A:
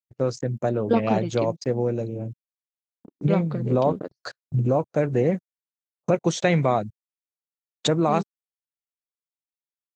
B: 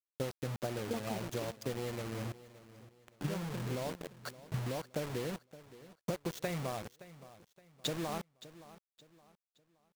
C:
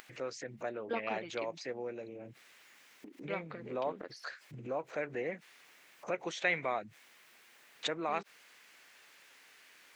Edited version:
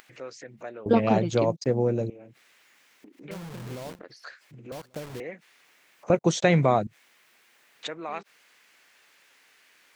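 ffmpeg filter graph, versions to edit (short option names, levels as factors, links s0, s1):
-filter_complex "[0:a]asplit=2[s0][s1];[1:a]asplit=2[s2][s3];[2:a]asplit=5[s4][s5][s6][s7][s8];[s4]atrim=end=0.862[s9];[s0]atrim=start=0.858:end=2.102[s10];[s5]atrim=start=2.098:end=3.312[s11];[s2]atrim=start=3.308:end=3.992[s12];[s6]atrim=start=3.988:end=4.722[s13];[s3]atrim=start=4.718:end=5.202[s14];[s7]atrim=start=5.198:end=6.102[s15];[s1]atrim=start=6.098:end=6.872[s16];[s8]atrim=start=6.868[s17];[s9][s10]acrossfade=d=0.004:c1=hsin:c2=hsin[s18];[s18][s11]acrossfade=d=0.004:c1=hsin:c2=hsin[s19];[s19][s12]acrossfade=d=0.004:c1=hsin:c2=hsin[s20];[s20][s13]acrossfade=d=0.004:c1=hsin:c2=hsin[s21];[s21][s14]acrossfade=d=0.004:c1=hsin:c2=hsin[s22];[s22][s15]acrossfade=d=0.004:c1=hsin:c2=hsin[s23];[s23][s16]acrossfade=d=0.004:c1=hsin:c2=hsin[s24];[s24][s17]acrossfade=d=0.004:c1=hsin:c2=hsin"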